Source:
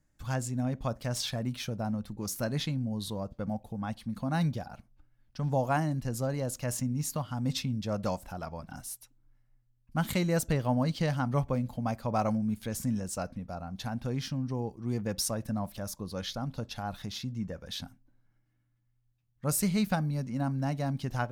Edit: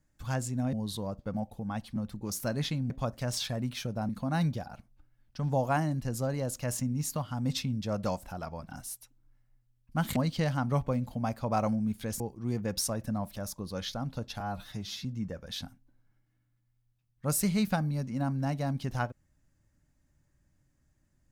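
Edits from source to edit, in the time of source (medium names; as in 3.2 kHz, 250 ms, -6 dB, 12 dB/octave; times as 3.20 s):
0.73–1.92 s: swap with 2.86–4.09 s
10.16–10.78 s: delete
12.82–14.61 s: delete
16.81–17.24 s: stretch 1.5×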